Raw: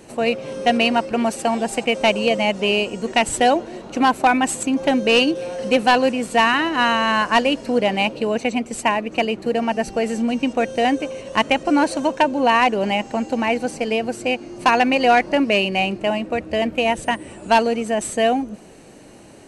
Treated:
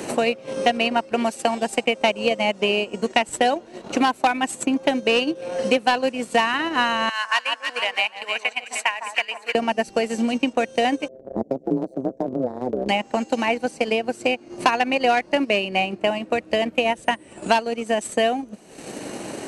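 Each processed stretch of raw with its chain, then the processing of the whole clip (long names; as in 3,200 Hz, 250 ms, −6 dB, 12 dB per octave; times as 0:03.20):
0:07.09–0:09.55: high-pass filter 1,500 Hz + delay that swaps between a low-pass and a high-pass 153 ms, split 1,400 Hz, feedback 61%, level −4 dB
0:11.08–0:12.89: phase distortion by the signal itself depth 0.059 ms + inverse Chebyshev low-pass filter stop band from 1,100 Hz + amplitude modulation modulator 130 Hz, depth 85%
whole clip: transient designer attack +4 dB, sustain −9 dB; low-shelf EQ 100 Hz −10.5 dB; multiband upward and downward compressor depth 70%; level −3 dB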